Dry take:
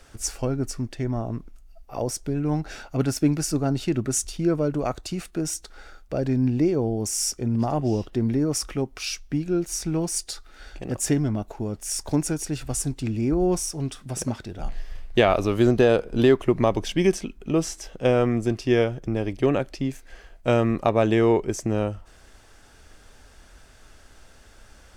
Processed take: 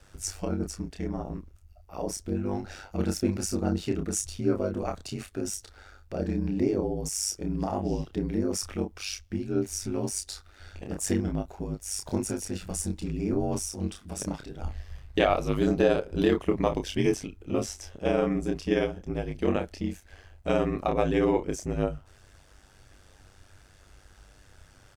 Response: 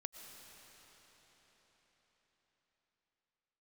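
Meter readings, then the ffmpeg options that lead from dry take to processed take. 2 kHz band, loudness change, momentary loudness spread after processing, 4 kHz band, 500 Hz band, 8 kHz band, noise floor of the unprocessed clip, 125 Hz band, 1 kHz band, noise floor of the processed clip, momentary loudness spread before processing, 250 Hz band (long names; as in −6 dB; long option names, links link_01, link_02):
−5.0 dB, −5.0 dB, 12 LU, −4.5 dB, −5.0 dB, −4.5 dB, −51 dBFS, −7.0 dB, −4.0 dB, −57 dBFS, 11 LU, −5.0 dB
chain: -filter_complex "[0:a]asplit=2[link_01][link_02];[link_02]adelay=29,volume=-5dB[link_03];[link_01][link_03]amix=inputs=2:normalize=0,aeval=exprs='val(0)*sin(2*PI*49*n/s)':channel_layout=same,volume=-3dB"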